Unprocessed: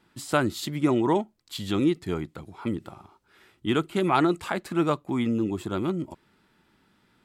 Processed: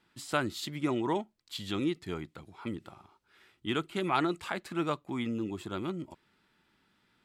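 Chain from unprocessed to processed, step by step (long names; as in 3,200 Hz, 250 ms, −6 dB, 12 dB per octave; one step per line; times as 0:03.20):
parametric band 3,000 Hz +5.5 dB 2.7 octaves
level −8.5 dB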